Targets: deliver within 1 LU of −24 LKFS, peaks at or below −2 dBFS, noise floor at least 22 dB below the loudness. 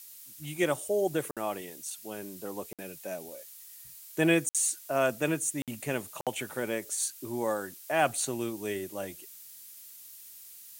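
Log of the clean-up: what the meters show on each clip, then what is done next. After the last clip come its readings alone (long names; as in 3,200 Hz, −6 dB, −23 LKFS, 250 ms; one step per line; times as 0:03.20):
number of dropouts 5; longest dropout 57 ms; background noise floor −50 dBFS; target noise floor −54 dBFS; integrated loudness −31.5 LKFS; sample peak −11.0 dBFS; target loudness −24.0 LKFS
→ repair the gap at 0:01.31/0:02.73/0:04.49/0:05.62/0:06.21, 57 ms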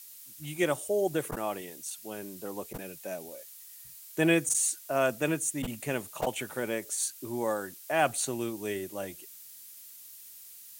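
number of dropouts 0; background noise floor −50 dBFS; target noise floor −54 dBFS
→ broadband denoise 6 dB, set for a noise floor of −50 dBFS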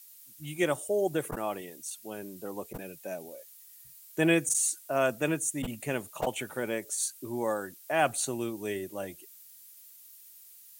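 background noise floor −53 dBFS; target noise floor −54 dBFS
→ broadband denoise 6 dB, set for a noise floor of −53 dBFS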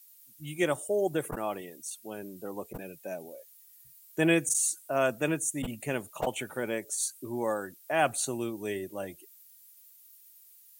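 background noise floor −57 dBFS; integrated loudness −31.5 LKFS; sample peak −11.0 dBFS; target loudness −24.0 LKFS
→ level +7.5 dB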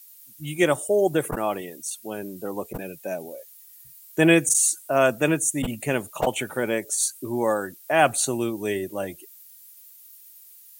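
integrated loudness −24.0 LKFS; sample peak −3.5 dBFS; background noise floor −49 dBFS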